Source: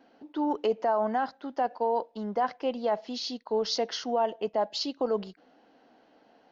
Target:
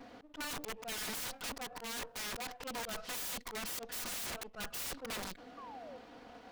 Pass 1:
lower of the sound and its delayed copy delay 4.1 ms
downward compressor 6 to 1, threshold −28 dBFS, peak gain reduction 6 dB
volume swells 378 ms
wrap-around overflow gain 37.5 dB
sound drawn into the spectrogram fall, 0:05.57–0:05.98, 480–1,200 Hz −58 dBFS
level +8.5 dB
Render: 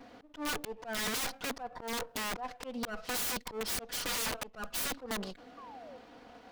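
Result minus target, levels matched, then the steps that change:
wrap-around overflow: distortion −11 dB
change: wrap-around overflow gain 44 dB

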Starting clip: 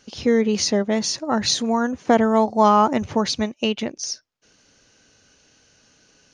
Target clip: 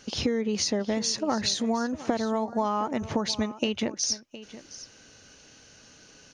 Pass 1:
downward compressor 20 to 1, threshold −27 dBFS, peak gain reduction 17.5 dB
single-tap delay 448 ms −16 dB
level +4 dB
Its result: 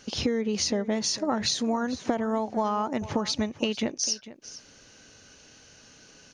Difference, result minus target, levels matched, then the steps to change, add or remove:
echo 266 ms early
change: single-tap delay 714 ms −16 dB

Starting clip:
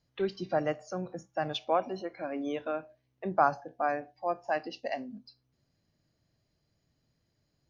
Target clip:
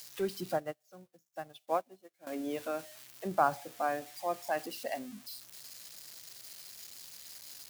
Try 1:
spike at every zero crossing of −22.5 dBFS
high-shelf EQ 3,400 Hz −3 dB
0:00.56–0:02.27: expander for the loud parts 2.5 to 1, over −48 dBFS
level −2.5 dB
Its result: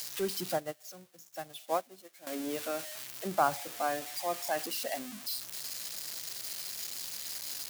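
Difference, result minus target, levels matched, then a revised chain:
spike at every zero crossing: distortion +9 dB
spike at every zero crossing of −32 dBFS
high-shelf EQ 3,400 Hz −3 dB
0:00.56–0:02.27: expander for the loud parts 2.5 to 1, over −48 dBFS
level −2.5 dB

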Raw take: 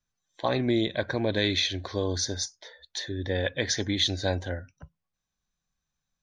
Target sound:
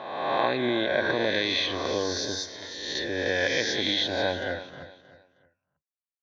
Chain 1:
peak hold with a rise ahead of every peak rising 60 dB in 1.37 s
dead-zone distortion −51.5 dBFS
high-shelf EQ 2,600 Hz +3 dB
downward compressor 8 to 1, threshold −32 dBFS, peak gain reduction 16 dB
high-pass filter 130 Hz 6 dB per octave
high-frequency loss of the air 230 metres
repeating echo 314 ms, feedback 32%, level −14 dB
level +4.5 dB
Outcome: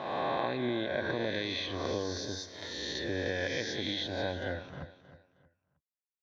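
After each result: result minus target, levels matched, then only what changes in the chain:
downward compressor: peak gain reduction +9.5 dB; dead-zone distortion: distortion +10 dB; 125 Hz band +7.0 dB
change: downward compressor 8 to 1, threshold −21 dBFS, peak gain reduction 6.5 dB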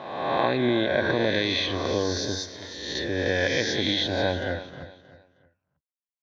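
dead-zone distortion: distortion +10 dB; 125 Hz band +6.5 dB
change: dead-zone distortion −62 dBFS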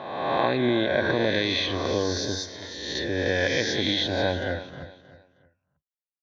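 125 Hz band +6.5 dB
change: high-pass filter 420 Hz 6 dB per octave

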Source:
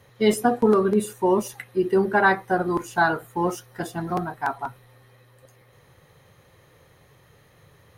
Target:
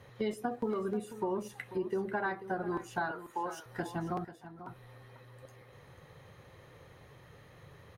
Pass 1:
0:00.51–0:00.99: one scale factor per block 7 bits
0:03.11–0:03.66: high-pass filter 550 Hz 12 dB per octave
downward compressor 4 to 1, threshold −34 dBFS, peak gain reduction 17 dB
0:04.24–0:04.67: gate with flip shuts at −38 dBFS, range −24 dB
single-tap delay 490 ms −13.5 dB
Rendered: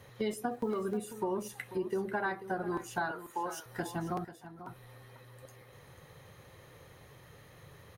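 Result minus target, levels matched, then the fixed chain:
8,000 Hz band +6.0 dB
0:00.51–0:00.99: one scale factor per block 7 bits
0:03.11–0:03.66: high-pass filter 550 Hz 12 dB per octave
downward compressor 4 to 1, threshold −34 dBFS, peak gain reduction 17 dB
high-shelf EQ 6,000 Hz −10 dB
0:04.24–0:04.67: gate with flip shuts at −38 dBFS, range −24 dB
single-tap delay 490 ms −13.5 dB

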